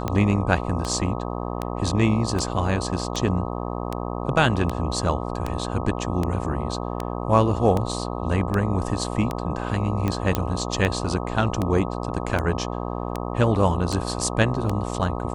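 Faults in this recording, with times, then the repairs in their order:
buzz 60 Hz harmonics 21 -29 dBFS
tick 78 rpm -12 dBFS
10.35 pop -7 dBFS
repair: de-click; de-hum 60 Hz, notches 21

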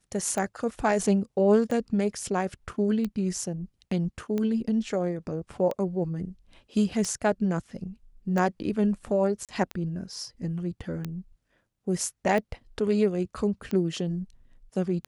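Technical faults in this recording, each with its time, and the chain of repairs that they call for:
tick 45 rpm -18 dBFS
9.45–9.49 gap 37 ms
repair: de-click; interpolate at 9.45, 37 ms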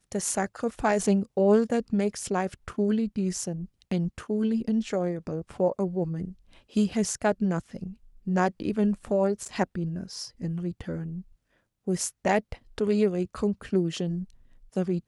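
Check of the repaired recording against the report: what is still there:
none

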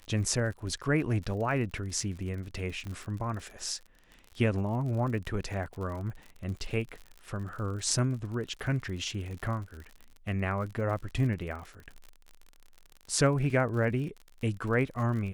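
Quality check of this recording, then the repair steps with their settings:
crackle 54/s -38 dBFS
2.87 pop -28 dBFS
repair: de-click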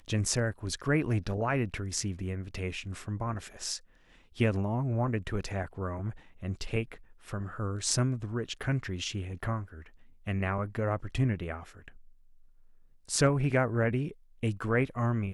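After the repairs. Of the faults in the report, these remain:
2.87 pop

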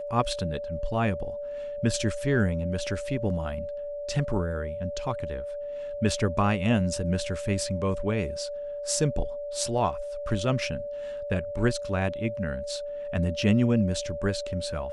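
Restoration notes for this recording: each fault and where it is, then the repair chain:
tone 580 Hz -32 dBFS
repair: notch 580 Hz, Q 30

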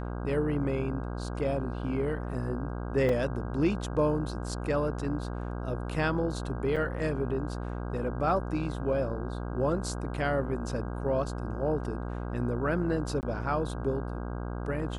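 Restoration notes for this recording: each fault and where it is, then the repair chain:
buzz 60 Hz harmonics 27 -35 dBFS
3.09 gap 2.9 ms
6.76–6.77 gap 5.6 ms
13.21–13.23 gap 19 ms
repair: de-hum 60 Hz, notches 27; interpolate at 3.09, 2.9 ms; interpolate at 6.76, 5.6 ms; interpolate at 13.21, 19 ms

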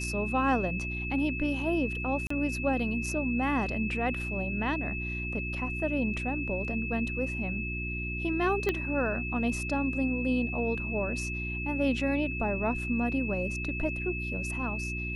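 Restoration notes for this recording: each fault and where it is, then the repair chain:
hum 60 Hz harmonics 6 -36 dBFS
tone 2600 Hz -35 dBFS
2.27–2.3 gap 34 ms
8.69 pop -15 dBFS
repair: de-click; de-hum 60 Hz, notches 6; notch 2600 Hz, Q 30; interpolate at 2.27, 34 ms

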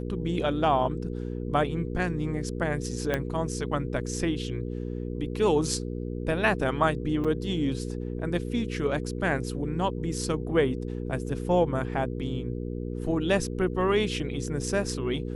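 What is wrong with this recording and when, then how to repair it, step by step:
hum 60 Hz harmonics 8 -33 dBFS
3.14 pop -13 dBFS
7.24–7.25 gap 6 ms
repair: de-click; de-hum 60 Hz, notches 8; interpolate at 7.24, 6 ms

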